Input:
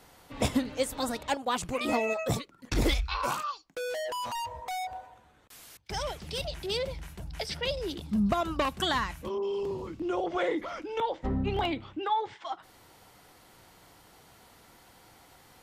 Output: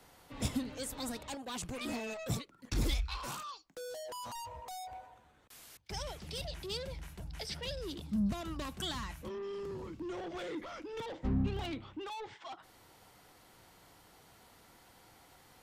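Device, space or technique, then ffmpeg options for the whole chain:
one-band saturation: -filter_complex "[0:a]asettb=1/sr,asplit=3[s0][s1][s2];[s0]atrim=end=10.934[s3];[s1]atrim=start=10.93:end=11.47,asetpts=PTS-STARTPTS,afade=t=in:d=0.004:c=qsin,afade=t=out:st=0.536:d=0.004:c=qsin,equalizer=f=190:w=0.39:g=5.5[s4];[s2]atrim=start=11.466[s5];[s3][s4]acrossfade=d=0.004:c1=hsin:c2=qsin[s6];[s6][s5]acrossfade=d=0.004:c1=qsin:c2=hsin,acrossover=split=260|3500[s7][s8][s9];[s8]asoftclip=type=tanh:threshold=0.0126[s10];[s7][s10][s9]amix=inputs=3:normalize=0,volume=0.631"

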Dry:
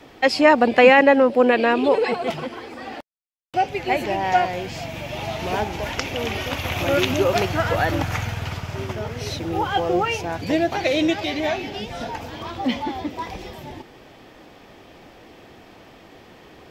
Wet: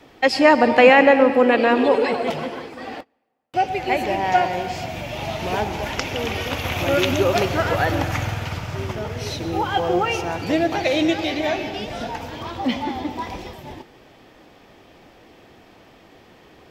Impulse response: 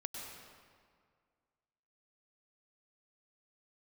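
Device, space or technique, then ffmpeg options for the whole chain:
keyed gated reverb: -filter_complex "[0:a]asplit=3[s0][s1][s2];[1:a]atrim=start_sample=2205[s3];[s1][s3]afir=irnorm=-1:irlink=0[s4];[s2]apad=whole_len=736804[s5];[s4][s5]sidechaingate=range=0.0501:threshold=0.0178:ratio=16:detection=peak,volume=0.75[s6];[s0][s6]amix=inputs=2:normalize=0,volume=0.708"

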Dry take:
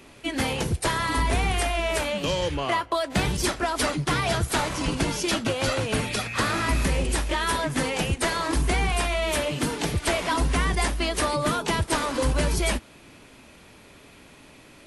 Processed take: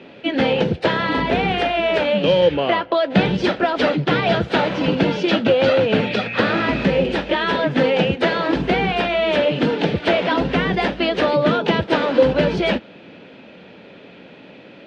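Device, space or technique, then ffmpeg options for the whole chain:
kitchen radio: -af "highpass=170,equalizer=f=190:t=q:w=4:g=7,equalizer=f=510:t=q:w=4:g=7,equalizer=f=1100:t=q:w=4:g=-9,equalizer=f=2100:t=q:w=4:g=-4,lowpass=f=3500:w=0.5412,lowpass=f=3500:w=1.3066,volume=2.51"

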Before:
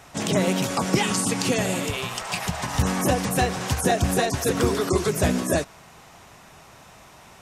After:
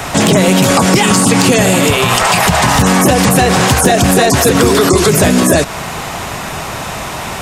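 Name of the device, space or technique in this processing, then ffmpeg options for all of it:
mastering chain: -filter_complex "[0:a]equalizer=f=5800:t=o:w=0.24:g=-3.5,acrossover=split=130|2000|6000[s0][s1][s2][s3];[s0]acompressor=threshold=0.02:ratio=4[s4];[s1]acompressor=threshold=0.0708:ratio=4[s5];[s2]acompressor=threshold=0.02:ratio=4[s6];[s3]acompressor=threshold=0.0251:ratio=4[s7];[s4][s5][s6][s7]amix=inputs=4:normalize=0,acompressor=threshold=0.0251:ratio=1.5,asoftclip=type=tanh:threshold=0.133,asoftclip=type=hard:threshold=0.0794,alimiter=level_in=23.7:limit=0.891:release=50:level=0:latency=1,volume=0.891"

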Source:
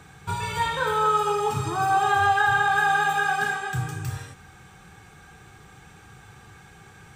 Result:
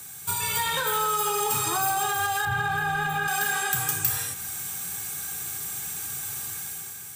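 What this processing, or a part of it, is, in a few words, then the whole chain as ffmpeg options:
FM broadcast chain: -filter_complex "[0:a]highpass=74,dynaudnorm=f=140:g=9:m=2.66,acrossover=split=390|3600[s0][s1][s2];[s0]acompressor=threshold=0.0316:ratio=4[s3];[s1]acompressor=threshold=0.141:ratio=4[s4];[s2]acompressor=threshold=0.00398:ratio=4[s5];[s3][s4][s5]amix=inputs=3:normalize=0,aemphasis=mode=production:type=75fm,alimiter=limit=0.211:level=0:latency=1:release=81,asoftclip=type=hard:threshold=0.158,lowpass=f=15000:w=0.5412,lowpass=f=15000:w=1.3066,aemphasis=mode=production:type=75fm,asettb=1/sr,asplit=3[s6][s7][s8];[s6]atrim=end=2.454[s9];[s7]atrim=start=2.45:end=3.28,asetpts=PTS-STARTPTS,afade=t=in:d=0.004:c=qsin,afade=t=out:st=0.826:d=0.004:c=qsin,bass=f=250:g=12,treble=f=4000:g=-14[s10];[s8]atrim=start=3.276[s11];[s9][s10]acrossfade=d=0.004:c1=hsin:c2=qsin[s12];[s12][s11]acrossfade=d=0.004:c1=qsin:c2=hsin,volume=0.562"

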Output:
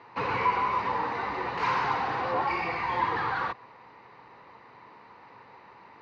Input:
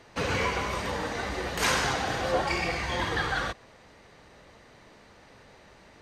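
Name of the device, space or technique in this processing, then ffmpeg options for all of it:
overdrive pedal into a guitar cabinet: -filter_complex "[0:a]asplit=2[s0][s1];[s1]highpass=f=720:p=1,volume=7.08,asoftclip=type=tanh:threshold=0.237[s2];[s0][s2]amix=inputs=2:normalize=0,lowpass=f=2000:p=1,volume=0.501,highpass=76,equalizer=f=120:t=q:w=4:g=7,equalizer=f=620:t=q:w=4:g=-9,equalizer=f=970:t=q:w=4:g=10,equalizer=f=1600:t=q:w=4:g=-5,equalizer=f=3300:t=q:w=4:g=-10,lowpass=f=4200:w=0.5412,lowpass=f=4200:w=1.3066,volume=0.531"

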